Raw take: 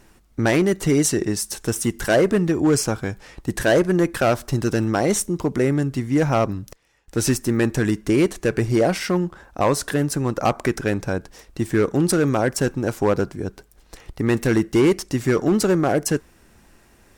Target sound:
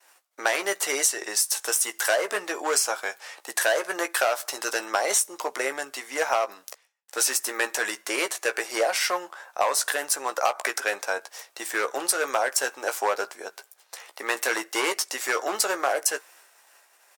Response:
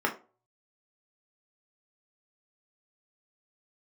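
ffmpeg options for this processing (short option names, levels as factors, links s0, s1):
-filter_complex "[0:a]agate=range=0.0224:threshold=0.00447:ratio=3:detection=peak,highpass=f=610:w=0.5412,highpass=f=610:w=1.3066,highshelf=f=6700:g=5,acompressor=threshold=0.0794:ratio=10,asplit=2[s0][s1];[s1]adelay=15,volume=0.376[s2];[s0][s2]amix=inputs=2:normalize=0,volume=1.41"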